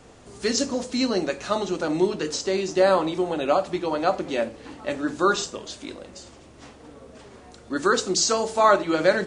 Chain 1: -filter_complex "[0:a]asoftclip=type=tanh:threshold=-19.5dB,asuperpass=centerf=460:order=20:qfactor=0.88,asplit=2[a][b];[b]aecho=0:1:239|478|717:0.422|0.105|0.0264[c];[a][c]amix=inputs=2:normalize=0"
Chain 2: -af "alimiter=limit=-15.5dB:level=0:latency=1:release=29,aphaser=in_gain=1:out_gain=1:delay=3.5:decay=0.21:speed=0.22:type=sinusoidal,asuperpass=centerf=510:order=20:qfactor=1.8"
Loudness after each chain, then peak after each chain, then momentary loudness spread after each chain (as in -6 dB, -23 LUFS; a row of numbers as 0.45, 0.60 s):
-29.0, -31.0 LUFS; -15.5, -16.0 dBFS; 17, 18 LU